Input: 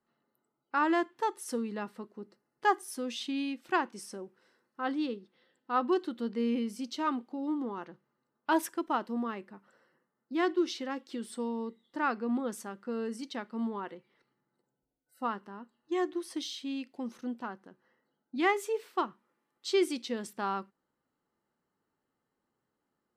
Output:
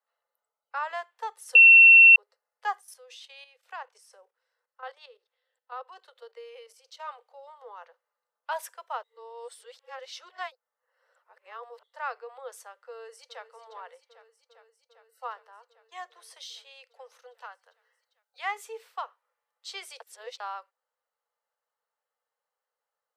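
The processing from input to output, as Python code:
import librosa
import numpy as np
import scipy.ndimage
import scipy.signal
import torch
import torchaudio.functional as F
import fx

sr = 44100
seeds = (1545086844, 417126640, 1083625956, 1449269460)

y = fx.level_steps(x, sr, step_db=11, at=(2.79, 7.08), fade=0.02)
y = fx.echo_throw(y, sr, start_s=12.89, length_s=0.59, ms=400, feedback_pct=80, wet_db=-13.0)
y = fx.tilt_shelf(y, sr, db=-6.0, hz=1100.0, at=(17.34, 18.39))
y = fx.edit(y, sr, fx.bleep(start_s=1.55, length_s=0.61, hz=2710.0, db=-6.5),
    fx.reverse_span(start_s=9.03, length_s=2.8),
    fx.reverse_span(start_s=20.0, length_s=0.4), tone=tone)
y = scipy.signal.sosfilt(scipy.signal.butter(16, 460.0, 'highpass', fs=sr, output='sos'), y)
y = F.gain(torch.from_numpy(y), -3.0).numpy()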